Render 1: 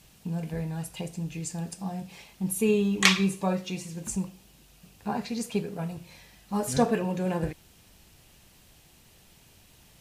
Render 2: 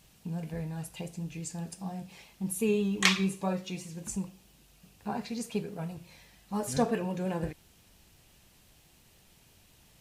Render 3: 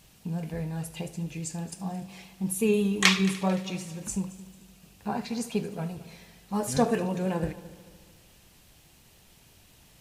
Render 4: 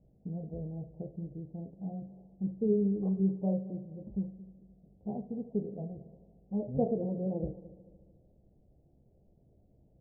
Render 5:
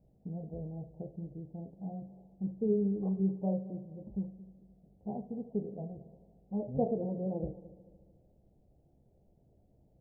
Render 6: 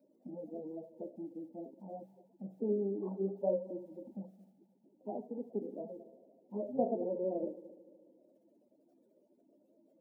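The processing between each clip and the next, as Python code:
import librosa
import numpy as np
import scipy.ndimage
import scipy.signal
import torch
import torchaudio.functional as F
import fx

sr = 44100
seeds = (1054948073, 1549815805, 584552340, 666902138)

y1 = fx.vibrato(x, sr, rate_hz=5.8, depth_cents=34.0)
y1 = y1 * 10.0 ** (-4.0 / 20.0)
y2 = fx.echo_heads(y1, sr, ms=74, heads='first and third', feedback_pct=54, wet_db=-19)
y2 = y2 * 10.0 ** (3.5 / 20.0)
y3 = scipy.signal.sosfilt(scipy.signal.butter(8, 670.0, 'lowpass', fs=sr, output='sos'), y2)
y3 = fx.doubler(y3, sr, ms=15.0, db=-11)
y3 = y3 * 10.0 ** (-4.5 / 20.0)
y4 = fx.peak_eq(y3, sr, hz=870.0, db=5.0, octaves=0.85)
y4 = y4 * 10.0 ** (-2.0 / 20.0)
y5 = fx.spec_quant(y4, sr, step_db=30)
y5 = scipy.signal.sosfilt(scipy.signal.butter(4, 240.0, 'highpass', fs=sr, output='sos'), y5)
y5 = y5 + 0.41 * np.pad(y5, (int(3.4 * sr / 1000.0), 0))[:len(y5)]
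y5 = y5 * 10.0 ** (1.0 / 20.0)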